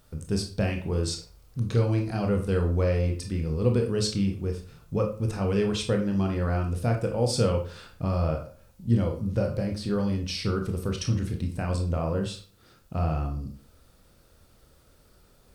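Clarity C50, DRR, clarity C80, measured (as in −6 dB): 8.0 dB, 2.5 dB, 13.0 dB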